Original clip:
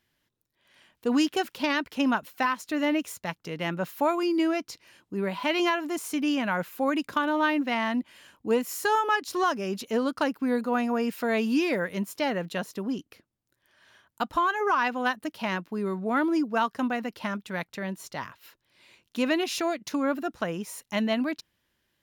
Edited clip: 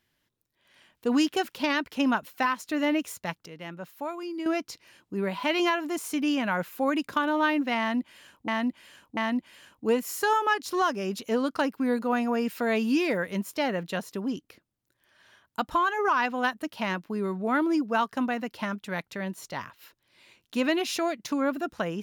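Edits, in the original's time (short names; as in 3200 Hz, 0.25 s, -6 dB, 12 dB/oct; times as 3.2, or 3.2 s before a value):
3.46–4.46 gain -9.5 dB
7.79–8.48 loop, 3 plays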